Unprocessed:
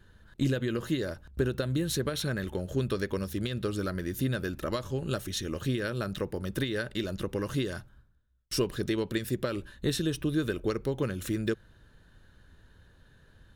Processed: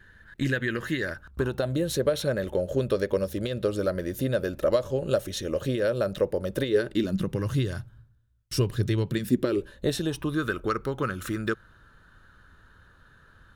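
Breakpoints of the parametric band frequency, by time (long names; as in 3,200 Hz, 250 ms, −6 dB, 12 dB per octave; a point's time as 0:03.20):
parametric band +14.5 dB 0.65 octaves
0:01.09 1,800 Hz
0:01.78 560 Hz
0:06.62 560 Hz
0:07.47 110 Hz
0:09.02 110 Hz
0:09.51 370 Hz
0:10.45 1,300 Hz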